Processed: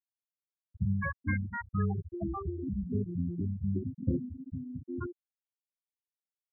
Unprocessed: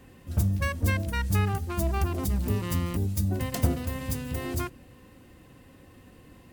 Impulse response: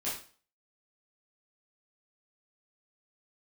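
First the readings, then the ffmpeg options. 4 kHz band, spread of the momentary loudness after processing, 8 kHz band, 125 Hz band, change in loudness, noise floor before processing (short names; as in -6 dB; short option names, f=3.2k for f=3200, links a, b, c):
under -40 dB, 8 LU, under -40 dB, -7.0 dB, -6.0 dB, -53 dBFS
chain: -filter_complex "[0:a]highpass=130,lowpass=6.3k,acrossover=split=600|3100[a][b][c];[b]adelay=400[d];[a]adelay=440[e];[e][d][c]amix=inputs=3:normalize=0,afftfilt=real='re*gte(hypot(re,im),0.126)':imag='im*gte(hypot(re,im),0.126)':win_size=1024:overlap=0.75"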